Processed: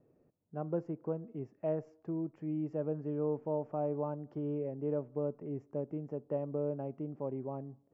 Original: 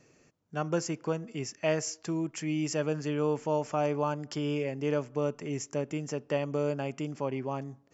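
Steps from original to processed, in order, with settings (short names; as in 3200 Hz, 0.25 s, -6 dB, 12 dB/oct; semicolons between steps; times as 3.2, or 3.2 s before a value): Chebyshev low-pass 620 Hz, order 2; gain -4.5 dB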